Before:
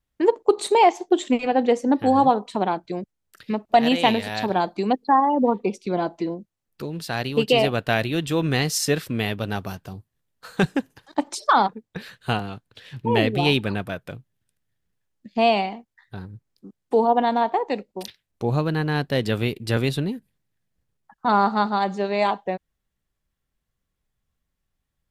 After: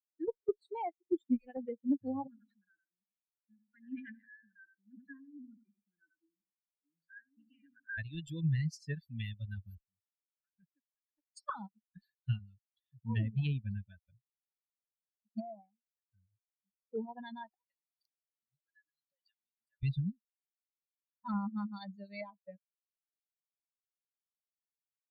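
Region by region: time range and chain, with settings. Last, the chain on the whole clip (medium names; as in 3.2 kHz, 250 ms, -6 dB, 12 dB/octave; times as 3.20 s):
2.27–7.98 s: two resonant band-passes 660 Hz, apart 2.5 oct + feedback delay 90 ms, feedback 31%, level -11 dB + decay stretcher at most 41 dB/s
9.77–11.37 s: CVSD coder 16 kbps + high-pass 360 Hz 6 dB/octave + compression 2:1, threshold -39 dBFS
15.40–16.79 s: companding laws mixed up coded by mu + steep low-pass 1.6 kHz + tilt EQ +2.5 dB/octave
17.54–19.83 s: frequency weighting A + compression, threshold -34 dBFS + lamp-driven phase shifter 1.9 Hz
whole clip: expander on every frequency bin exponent 3; low-pass that closes with the level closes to 740 Hz, closed at -23.5 dBFS; amplifier tone stack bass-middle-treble 6-0-2; trim +13.5 dB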